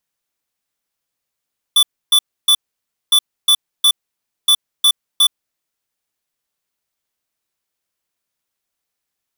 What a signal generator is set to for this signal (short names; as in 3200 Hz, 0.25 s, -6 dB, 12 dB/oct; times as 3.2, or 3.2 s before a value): beep pattern square 3480 Hz, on 0.07 s, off 0.29 s, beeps 3, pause 0.57 s, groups 3, -10.5 dBFS